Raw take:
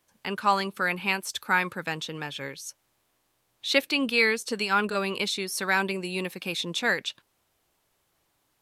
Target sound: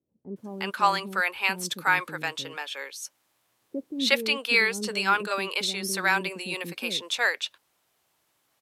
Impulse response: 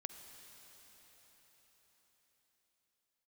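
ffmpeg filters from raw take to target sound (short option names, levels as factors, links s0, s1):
-filter_complex "[0:a]highpass=f=230:p=1,acrossover=split=410[s0][s1];[s1]adelay=360[s2];[s0][s2]amix=inputs=2:normalize=0,volume=1.19"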